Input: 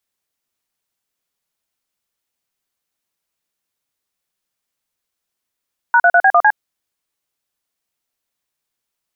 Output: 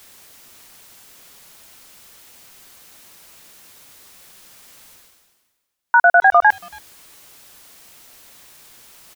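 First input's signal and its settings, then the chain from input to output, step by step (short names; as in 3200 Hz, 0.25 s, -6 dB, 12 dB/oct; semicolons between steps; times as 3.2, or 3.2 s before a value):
DTMF "#33B1C", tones 59 ms, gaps 42 ms, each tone -10 dBFS
reverse; upward compressor, threshold -20 dBFS; reverse; speakerphone echo 0.28 s, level -22 dB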